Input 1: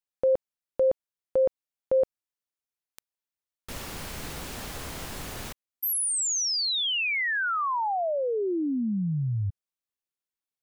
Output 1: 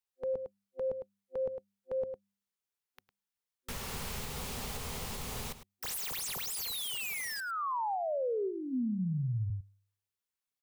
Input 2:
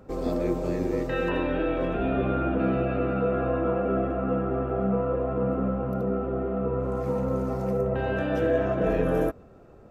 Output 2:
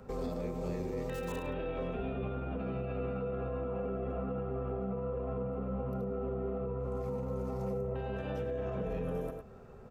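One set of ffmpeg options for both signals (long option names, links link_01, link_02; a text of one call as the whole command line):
ffmpeg -i in.wav -filter_complex "[0:a]acrossover=split=1900[link_01][link_02];[link_02]aeval=exprs='(mod(50.1*val(0)+1,2)-1)/50.1':channel_layout=same[link_03];[link_01][link_03]amix=inputs=2:normalize=0,superequalizer=6b=0.282:8b=0.631,asplit=2[link_04][link_05];[link_05]adelay=105,volume=-13dB,highshelf=frequency=4000:gain=-2.36[link_06];[link_04][link_06]amix=inputs=2:normalize=0,acrossover=split=320[link_07][link_08];[link_08]acompressor=threshold=-30dB:ratio=2:attack=1.3:release=93:knee=2.83:detection=peak[link_09];[link_07][link_09]amix=inputs=2:normalize=0,bandreject=frequency=99.44:width_type=h:width=4,bandreject=frequency=198.88:width_type=h:width=4,alimiter=level_in=4dB:limit=-24dB:level=0:latency=1:release=219,volume=-4dB,adynamicequalizer=threshold=0.00112:dfrequency=1600:dqfactor=2.7:tfrequency=1600:tqfactor=2.7:attack=5:release=100:ratio=0.4:range=3.5:mode=cutabove:tftype=bell" out.wav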